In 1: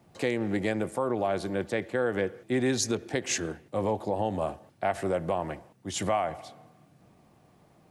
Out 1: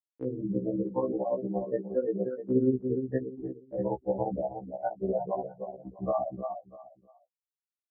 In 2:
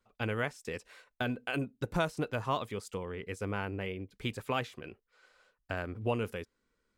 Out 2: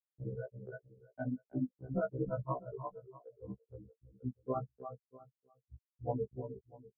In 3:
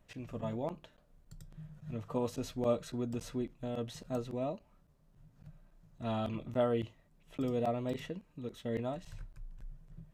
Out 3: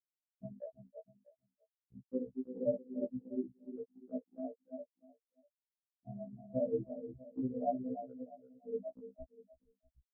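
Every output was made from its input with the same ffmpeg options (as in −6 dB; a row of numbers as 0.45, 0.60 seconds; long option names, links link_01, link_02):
-af "adynamicsmooth=sensitivity=2:basefreq=600,afftfilt=real='re*gte(hypot(re,im),0.112)':imag='im*gte(hypot(re,im),0.112)':win_size=1024:overlap=0.75,agate=range=-60dB:threshold=-49dB:ratio=16:detection=peak,aecho=1:1:322|644|966:0.422|0.101|0.0243,tremolo=f=17:d=0.97,afftfilt=real='re*1.73*eq(mod(b,3),0)':imag='im*1.73*eq(mod(b,3),0)':win_size=2048:overlap=0.75,volume=5.5dB"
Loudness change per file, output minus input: −2.0, −5.0, −4.0 LU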